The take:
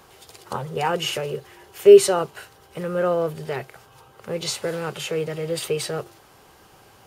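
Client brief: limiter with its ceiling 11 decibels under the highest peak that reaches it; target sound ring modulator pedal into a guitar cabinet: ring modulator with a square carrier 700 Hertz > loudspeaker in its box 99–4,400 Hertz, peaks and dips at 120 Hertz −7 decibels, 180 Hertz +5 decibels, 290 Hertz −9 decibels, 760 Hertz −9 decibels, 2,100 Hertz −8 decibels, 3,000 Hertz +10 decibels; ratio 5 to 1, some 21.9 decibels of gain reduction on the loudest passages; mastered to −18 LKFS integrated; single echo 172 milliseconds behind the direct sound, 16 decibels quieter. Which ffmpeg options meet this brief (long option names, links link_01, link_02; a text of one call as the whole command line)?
ffmpeg -i in.wav -af "acompressor=threshold=-31dB:ratio=5,alimiter=level_in=3.5dB:limit=-24dB:level=0:latency=1,volume=-3.5dB,aecho=1:1:172:0.158,aeval=exprs='val(0)*sgn(sin(2*PI*700*n/s))':channel_layout=same,highpass=99,equalizer=frequency=120:width_type=q:width=4:gain=-7,equalizer=frequency=180:width_type=q:width=4:gain=5,equalizer=frequency=290:width_type=q:width=4:gain=-9,equalizer=frequency=760:width_type=q:width=4:gain=-9,equalizer=frequency=2100:width_type=q:width=4:gain=-8,equalizer=frequency=3000:width_type=q:width=4:gain=10,lowpass=frequency=4400:width=0.5412,lowpass=frequency=4400:width=1.3066,volume=19.5dB" out.wav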